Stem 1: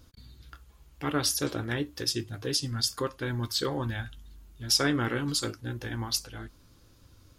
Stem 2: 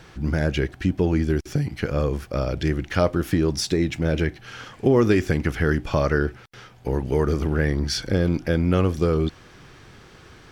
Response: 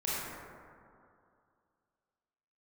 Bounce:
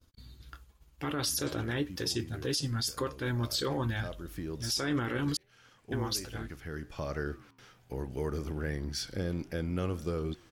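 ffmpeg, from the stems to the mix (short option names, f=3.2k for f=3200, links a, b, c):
-filter_complex "[0:a]agate=range=-33dB:threshold=-49dB:ratio=3:detection=peak,volume=0dB,asplit=3[a][b][c];[a]atrim=end=5.37,asetpts=PTS-STARTPTS,afade=t=out:st=5.366:d=0.004:c=hsin[d];[b]atrim=start=5.37:end=5.92,asetpts=PTS-STARTPTS,volume=0[e];[c]atrim=start=5.92,asetpts=PTS-STARTPTS,afade=t=in:d=0.004:c=hsin[f];[d][e][f]concat=n=3:v=0:a=1,asplit=2[g][h];[1:a]highshelf=f=7.1k:g=10.5,flanger=delay=8.2:depth=5.4:regen=-90:speed=1.3:shape=triangular,adelay=1050,volume=-8.5dB[i];[h]apad=whole_len=509943[j];[i][j]sidechaincompress=threshold=-38dB:ratio=5:attack=30:release=1170[k];[g][k]amix=inputs=2:normalize=0,alimiter=limit=-22dB:level=0:latency=1:release=22"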